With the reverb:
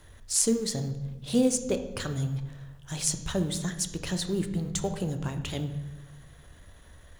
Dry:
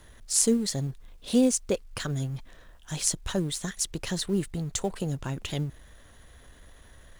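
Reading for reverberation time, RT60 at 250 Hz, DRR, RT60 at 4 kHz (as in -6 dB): 1.1 s, 1.5 s, 7.5 dB, 0.80 s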